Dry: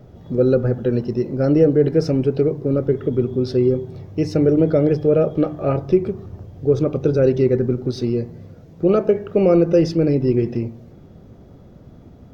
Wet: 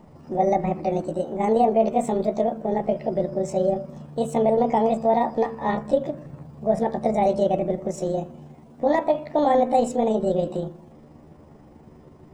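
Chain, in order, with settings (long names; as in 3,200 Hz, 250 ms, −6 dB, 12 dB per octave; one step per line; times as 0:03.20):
pitch shift by two crossfaded delay taps +7 semitones
level −3.5 dB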